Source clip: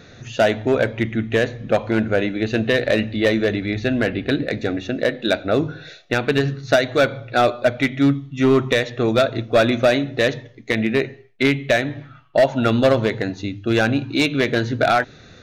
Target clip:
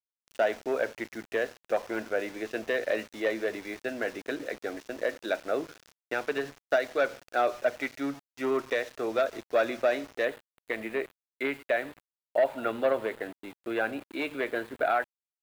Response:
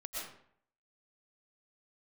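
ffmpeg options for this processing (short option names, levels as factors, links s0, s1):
-filter_complex "[0:a]acrossover=split=320 2600:gain=0.0631 1 0.178[s0][s1][s2];[s0][s1][s2]amix=inputs=3:normalize=0,aeval=exprs='val(0)*gte(abs(val(0)),0.0178)':c=same,asetnsamples=n=441:p=0,asendcmd='10.25 equalizer g -9',equalizer=f=5700:w=2:g=4.5,volume=0.376"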